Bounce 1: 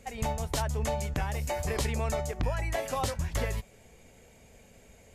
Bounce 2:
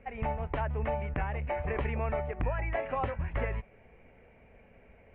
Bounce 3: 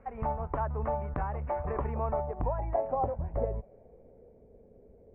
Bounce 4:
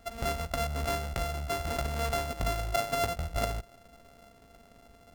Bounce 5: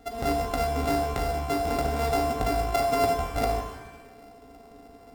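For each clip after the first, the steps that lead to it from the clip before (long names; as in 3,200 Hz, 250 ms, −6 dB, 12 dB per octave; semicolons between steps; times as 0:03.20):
Butterworth low-pass 2,600 Hz 48 dB per octave; parametric band 140 Hz −3 dB 2.3 octaves
low-pass filter sweep 1,200 Hz → 440 Hz, 0:01.71–0:04.49; dynamic equaliser 1,900 Hz, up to −6 dB, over −47 dBFS, Q 1; level −1 dB
samples sorted by size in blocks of 64 samples
hollow resonant body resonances 290/420/750/3,700 Hz, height 13 dB, ringing for 60 ms; reverb with rising layers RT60 1 s, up +7 semitones, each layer −8 dB, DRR 4 dB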